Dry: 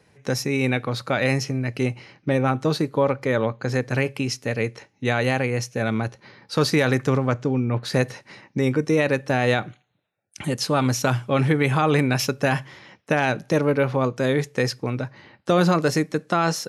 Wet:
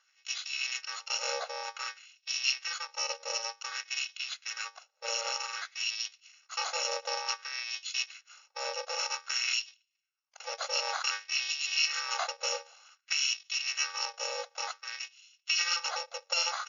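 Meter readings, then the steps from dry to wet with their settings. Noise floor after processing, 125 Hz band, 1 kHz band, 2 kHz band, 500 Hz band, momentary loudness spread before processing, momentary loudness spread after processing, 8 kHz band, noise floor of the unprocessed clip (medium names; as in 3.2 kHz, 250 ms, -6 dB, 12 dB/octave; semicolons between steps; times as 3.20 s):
-77 dBFS, under -40 dB, -11.5 dB, -8.0 dB, -20.5 dB, 8 LU, 10 LU, 0.0 dB, -64 dBFS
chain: bit-reversed sample order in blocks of 128 samples; brick-wall FIR band-pass 450–7000 Hz; LFO high-pass sine 0.54 Hz 570–3000 Hz; trim -5.5 dB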